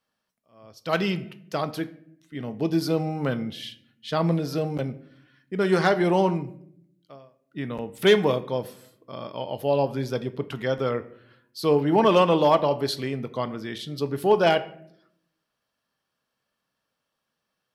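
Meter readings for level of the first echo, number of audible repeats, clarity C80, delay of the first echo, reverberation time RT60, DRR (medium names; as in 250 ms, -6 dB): no echo, no echo, 19.5 dB, no echo, 0.70 s, 11.5 dB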